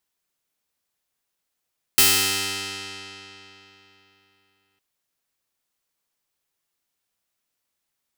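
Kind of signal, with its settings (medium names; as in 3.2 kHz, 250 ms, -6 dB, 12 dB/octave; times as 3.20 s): plucked string G2, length 2.81 s, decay 3.47 s, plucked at 0.17, bright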